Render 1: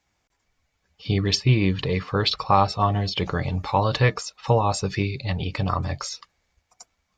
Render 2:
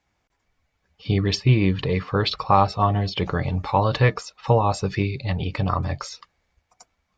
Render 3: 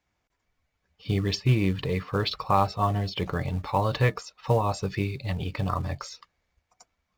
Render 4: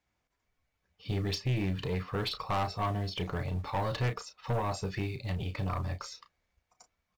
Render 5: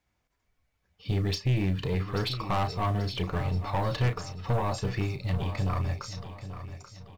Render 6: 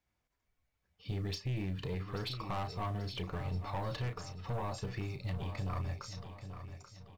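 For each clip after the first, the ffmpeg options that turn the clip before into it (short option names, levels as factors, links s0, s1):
-af "highshelf=f=4800:g=-10,volume=1.19"
-filter_complex "[0:a]bandreject=f=820:w=24,asplit=2[s0][s1];[s1]acrusher=bits=4:mode=log:mix=0:aa=0.000001,volume=0.447[s2];[s0][s2]amix=inputs=2:normalize=0,volume=0.398"
-filter_complex "[0:a]asplit=2[s0][s1];[s1]adelay=33,volume=0.316[s2];[s0][s2]amix=inputs=2:normalize=0,aeval=exprs='(tanh(12.6*val(0)+0.2)-tanh(0.2))/12.6':c=same,volume=0.668"
-filter_complex "[0:a]lowshelf=f=160:g=4.5,asplit=2[s0][s1];[s1]aecho=0:1:835|1670|2505|3340:0.266|0.109|0.0447|0.0183[s2];[s0][s2]amix=inputs=2:normalize=0,volume=1.26"
-af "alimiter=limit=0.0708:level=0:latency=1:release=162,volume=0.473"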